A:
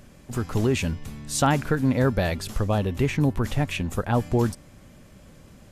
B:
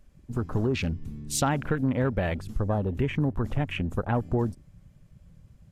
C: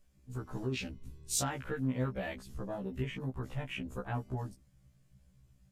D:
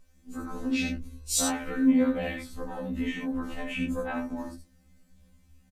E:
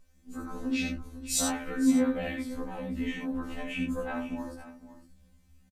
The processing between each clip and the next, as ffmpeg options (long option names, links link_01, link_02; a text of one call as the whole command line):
ffmpeg -i in.wav -af "afwtdn=0.02,acompressor=threshold=-24dB:ratio=2" out.wav
ffmpeg -i in.wav -af "highshelf=frequency=2800:gain=9,afftfilt=real='re*1.73*eq(mod(b,3),0)':imag='im*1.73*eq(mod(b,3),0)':win_size=2048:overlap=0.75,volume=-8.5dB" out.wav
ffmpeg -i in.wav -af "aecho=1:1:64|79:0.447|0.422,afftfilt=real='re*2*eq(mod(b,4),0)':imag='im*2*eq(mod(b,4),0)':win_size=2048:overlap=0.75,volume=8.5dB" out.wav
ffmpeg -i in.wav -af "aecho=1:1:508:0.2,volume=-2dB" out.wav